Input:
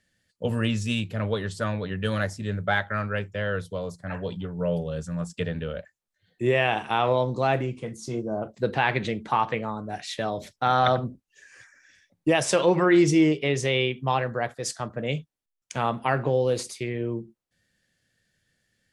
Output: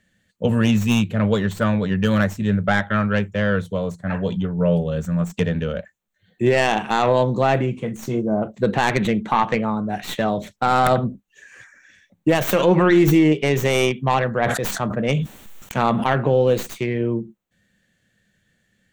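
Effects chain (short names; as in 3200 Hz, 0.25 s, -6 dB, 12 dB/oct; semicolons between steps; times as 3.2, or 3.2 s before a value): tracing distortion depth 0.25 ms; thirty-one-band EQ 200 Hz +8 dB, 5000 Hz -12 dB, 10000 Hz -9 dB; limiter -13.5 dBFS, peak gain reduction 5.5 dB; 14.36–16.04 sustainer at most 35 dB/s; gain +6.5 dB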